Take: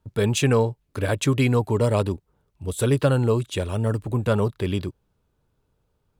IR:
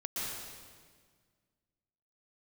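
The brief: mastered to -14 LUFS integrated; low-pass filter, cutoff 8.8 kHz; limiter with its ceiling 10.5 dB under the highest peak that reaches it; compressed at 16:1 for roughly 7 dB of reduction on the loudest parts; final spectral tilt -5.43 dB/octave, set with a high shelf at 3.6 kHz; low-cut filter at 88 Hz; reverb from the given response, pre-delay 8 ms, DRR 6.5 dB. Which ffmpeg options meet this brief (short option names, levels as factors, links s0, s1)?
-filter_complex "[0:a]highpass=88,lowpass=8800,highshelf=f=3600:g=7,acompressor=threshold=0.0891:ratio=16,alimiter=limit=0.0841:level=0:latency=1,asplit=2[s0][s1];[1:a]atrim=start_sample=2205,adelay=8[s2];[s1][s2]afir=irnorm=-1:irlink=0,volume=0.316[s3];[s0][s3]amix=inputs=2:normalize=0,volume=7.5"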